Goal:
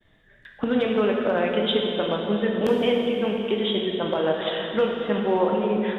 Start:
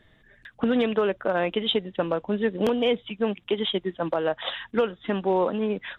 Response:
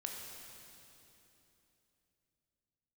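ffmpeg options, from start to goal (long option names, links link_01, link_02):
-filter_complex "[0:a]agate=range=-33dB:threshold=-56dB:ratio=3:detection=peak[link_01];[1:a]atrim=start_sample=2205[link_02];[link_01][link_02]afir=irnorm=-1:irlink=0,volume=2.5dB"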